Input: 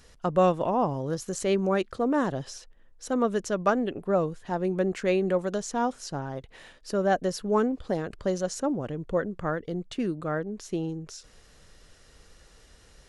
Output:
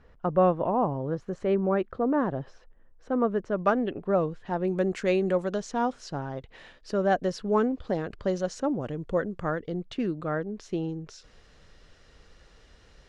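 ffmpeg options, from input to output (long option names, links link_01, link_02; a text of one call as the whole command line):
ffmpeg -i in.wav -af "asetnsamples=nb_out_samples=441:pad=0,asendcmd='3.59 lowpass f 3600;4.68 lowpass f 9000;5.44 lowpass f 4800;8.81 lowpass f 8000;9.63 lowpass f 4600',lowpass=1600" out.wav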